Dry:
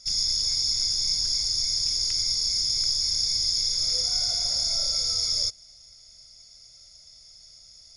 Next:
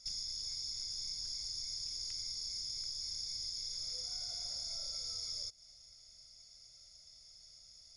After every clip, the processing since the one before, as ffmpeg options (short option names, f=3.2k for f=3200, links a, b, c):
-af "acompressor=threshold=-31dB:ratio=6,volume=-8dB"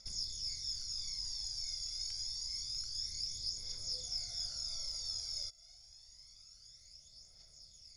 -af "aphaser=in_gain=1:out_gain=1:delay=1.5:decay=0.58:speed=0.27:type=triangular,volume=-1.5dB"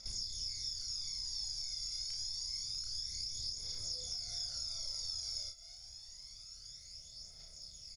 -filter_complex "[0:a]acompressor=threshold=-44dB:ratio=6,asplit=2[a][b];[b]aecho=0:1:32|58:0.668|0.188[c];[a][c]amix=inputs=2:normalize=0,volume=4.5dB"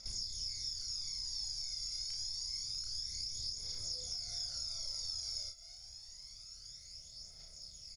-af "bandreject=f=3.5k:w=21"